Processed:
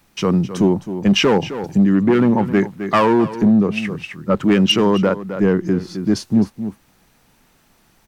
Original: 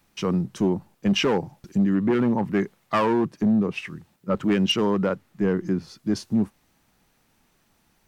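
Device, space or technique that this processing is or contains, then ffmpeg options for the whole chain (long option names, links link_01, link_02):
ducked delay: -filter_complex "[0:a]asplit=3[link_01][link_02][link_03];[link_02]adelay=262,volume=-4dB[link_04];[link_03]apad=whole_len=367644[link_05];[link_04][link_05]sidechaincompress=threshold=-31dB:ratio=10:attack=37:release=497[link_06];[link_01][link_06]amix=inputs=2:normalize=0,volume=7dB"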